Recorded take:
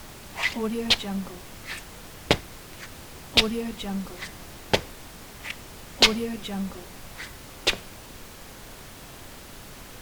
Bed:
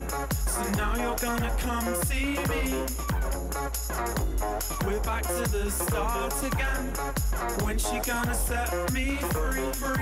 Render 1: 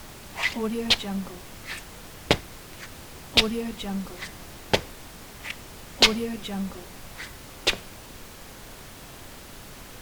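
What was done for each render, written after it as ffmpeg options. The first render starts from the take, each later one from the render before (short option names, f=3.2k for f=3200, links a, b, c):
-af anull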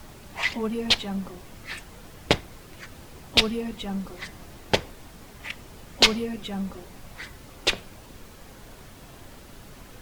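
-af "afftdn=nr=6:nf=-44"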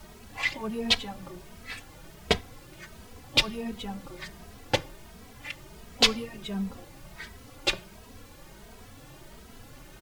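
-filter_complex "[0:a]asplit=2[a][b];[b]adelay=2.8,afreqshift=1.4[c];[a][c]amix=inputs=2:normalize=1"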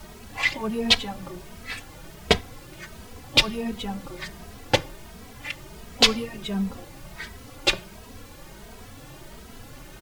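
-af "volume=5dB,alimiter=limit=-2dB:level=0:latency=1"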